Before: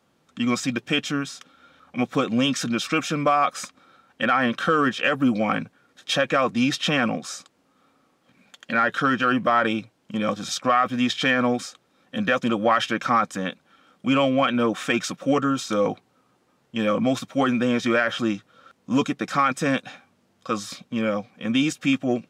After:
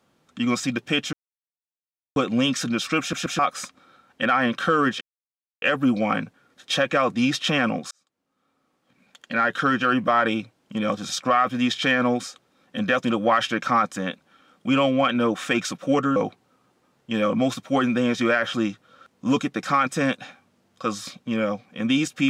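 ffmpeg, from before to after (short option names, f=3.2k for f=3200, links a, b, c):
-filter_complex "[0:a]asplit=9[a][b][c][d][e][f][g][h][i];[a]atrim=end=1.13,asetpts=PTS-STARTPTS,afade=t=out:st=1.126:d=0.004:c=hsin[j];[b]atrim=start=1.13:end=2.16,asetpts=PTS-STARTPTS,volume=0[k];[c]atrim=start=2.16:end=3.132,asetpts=PTS-STARTPTS,afade=t=in:d=0.004:c=hsin[l];[d]atrim=start=2.998:end=3.132[m];[e]atrim=start=2.998:end=3.132[n];[f]atrim=start=3.388:end=5.01,asetpts=PTS-STARTPTS,afade=t=out:st=1.618:d=0.004:c=hsin,apad=pad_dur=0.61[o];[g]atrim=start=5.01:end=7.3,asetpts=PTS-STARTPTS,afade=t=in:d=0.004:c=hsin,afade=t=out:st=2.286:d=0.004:c=hsin[p];[h]atrim=start=7.3:end=15.552,asetpts=PTS-STARTPTS,afade=t=in:d=1.65[q];[i]atrim=start=15.808[r];[j][k][l]concat=n=3:v=0:a=1[s];[s][m]acrossfade=d=0.004:c1=hsin:c2=hsin[t];[t][n]acrossfade=d=0.004:c1=hsin:c2=hsin[u];[o][p][q]concat=n=3:v=0:a=1[v];[u][v]acrossfade=d=0.004:c1=hsin:c2=hsin[w];[w][r]acrossfade=d=0.004:c1=hsin:c2=hsin"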